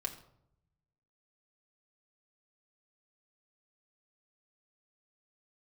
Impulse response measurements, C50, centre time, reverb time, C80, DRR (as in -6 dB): 12.0 dB, 11 ms, 0.75 s, 14.0 dB, 1.0 dB